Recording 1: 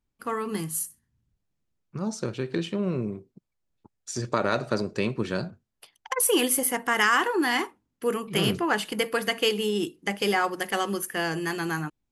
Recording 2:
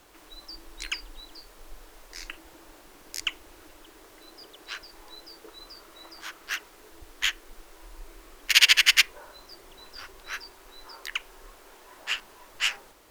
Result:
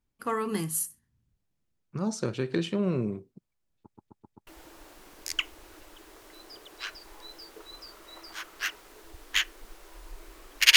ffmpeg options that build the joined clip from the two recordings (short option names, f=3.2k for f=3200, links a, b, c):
-filter_complex "[0:a]apad=whole_dur=10.76,atrim=end=10.76,asplit=5[a][b][c][d][e];[a]atrim=end=3.952[f];[b]atrim=start=3.818:end=3.952[g];[c]atrim=start=3.818:end=3.952[h];[d]atrim=start=3.818:end=3.952[i];[e]atrim=start=3.818:end=3.952[j];[1:a]atrim=start=2.348:end=8.64[k];[f][g]acrossfade=d=0.004:c1=hsin:c2=hsin[l];[l][h]acrossfade=d=0.004:c1=hsin:c2=hsin[m];[m][i]acrossfade=d=0.004:c1=hsin:c2=hsin[n];[n][j]acrossfade=d=0.004:c1=hsin:c2=hsin[o];[o][k]acrossfade=d=0.004:c1=hsin:c2=hsin"